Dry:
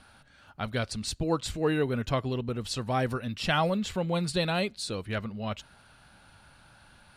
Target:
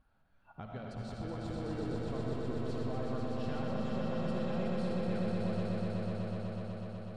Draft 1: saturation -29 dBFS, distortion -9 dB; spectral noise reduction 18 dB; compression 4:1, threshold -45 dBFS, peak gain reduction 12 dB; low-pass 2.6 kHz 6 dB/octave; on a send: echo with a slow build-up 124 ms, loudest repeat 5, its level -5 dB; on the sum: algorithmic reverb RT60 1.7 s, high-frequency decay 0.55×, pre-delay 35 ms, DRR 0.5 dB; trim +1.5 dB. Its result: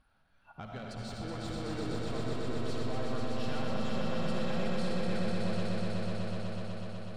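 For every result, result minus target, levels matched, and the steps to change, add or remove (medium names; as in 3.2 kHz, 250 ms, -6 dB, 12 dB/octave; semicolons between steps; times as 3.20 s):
saturation: distortion +7 dB; 2 kHz band +4.5 dB
change: saturation -21.5 dBFS, distortion -16 dB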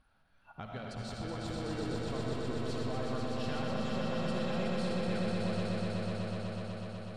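2 kHz band +4.5 dB
change: low-pass 860 Hz 6 dB/octave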